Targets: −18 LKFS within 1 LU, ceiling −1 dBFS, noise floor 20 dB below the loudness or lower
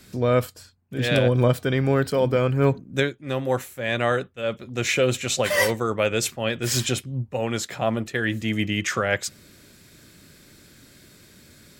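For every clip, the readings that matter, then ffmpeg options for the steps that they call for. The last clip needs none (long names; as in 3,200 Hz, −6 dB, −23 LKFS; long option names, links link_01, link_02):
integrated loudness −23.5 LKFS; sample peak −7.0 dBFS; target loudness −18.0 LKFS
→ -af "volume=5.5dB"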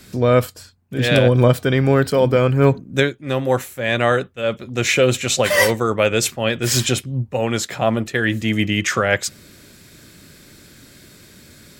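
integrated loudness −18.0 LKFS; sample peak −1.5 dBFS; background noise floor −47 dBFS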